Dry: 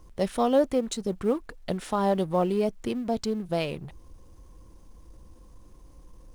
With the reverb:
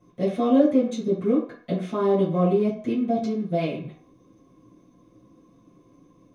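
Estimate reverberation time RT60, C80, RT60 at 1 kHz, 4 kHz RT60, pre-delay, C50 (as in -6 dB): 0.50 s, 10.5 dB, 0.50 s, 0.45 s, 3 ms, 6.0 dB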